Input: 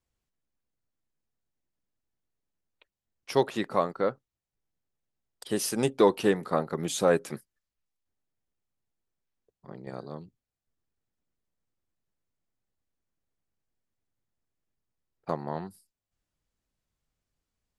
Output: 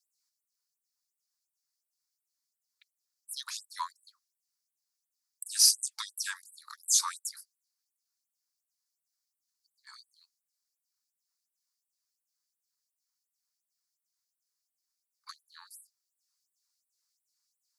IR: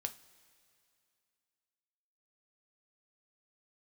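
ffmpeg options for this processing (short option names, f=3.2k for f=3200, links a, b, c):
-af "afreqshift=-130,highshelf=f=3.8k:t=q:w=3:g=8,afftfilt=real='re*gte(b*sr/1024,830*pow(7900/830,0.5+0.5*sin(2*PI*2.8*pts/sr)))':imag='im*gte(b*sr/1024,830*pow(7900/830,0.5+0.5*sin(2*PI*2.8*pts/sr)))':win_size=1024:overlap=0.75"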